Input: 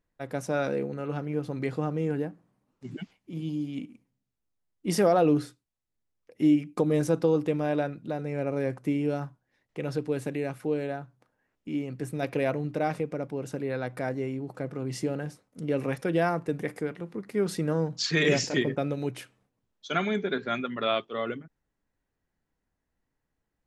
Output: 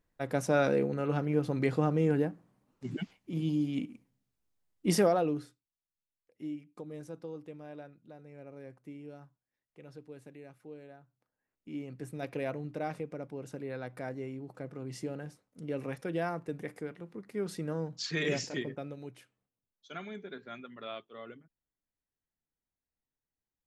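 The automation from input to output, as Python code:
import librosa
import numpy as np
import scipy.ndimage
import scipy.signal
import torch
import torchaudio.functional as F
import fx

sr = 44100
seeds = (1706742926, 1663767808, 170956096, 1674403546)

y = fx.gain(x, sr, db=fx.line((4.87, 1.5), (5.34, -10.5), (6.69, -19.0), (11.0, -19.0), (11.82, -8.0), (18.4, -8.0), (19.2, -15.0)))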